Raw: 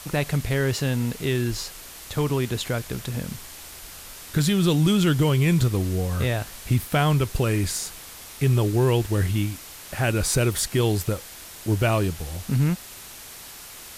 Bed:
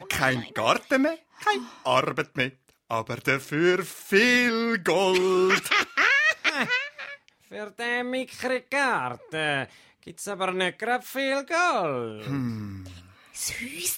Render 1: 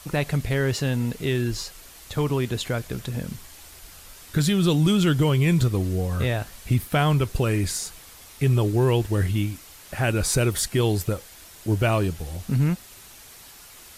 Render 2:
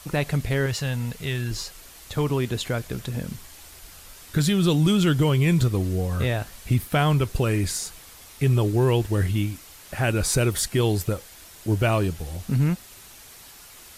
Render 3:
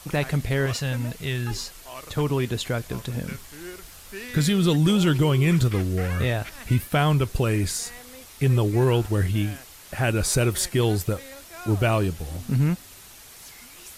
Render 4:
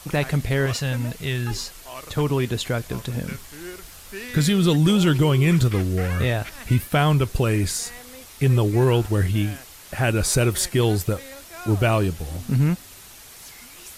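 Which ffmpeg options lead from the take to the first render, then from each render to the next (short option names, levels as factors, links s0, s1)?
-af "afftdn=nr=6:nf=-42"
-filter_complex "[0:a]asettb=1/sr,asplit=3[s0][s1][s2];[s0]atrim=end=0.664[s3];[s1]atrim=start=0.66:end=1.51,asetpts=PTS-STARTPTS,afade=t=in:d=0.004:c=qsin,afade=t=out:st=0.846:d=0.004:c=qsin,equalizer=f=320:w=1.4:g=-11.5[s4];[s2]atrim=start=1.506[s5];[s3][s4]acrossfade=d=0.004:c1=hsin:c2=qsin[s6];[s6][s5]acrossfade=d=0.004:c1=qsin:c2=hsin"
-filter_complex "[1:a]volume=0.126[s0];[0:a][s0]amix=inputs=2:normalize=0"
-af "volume=1.26"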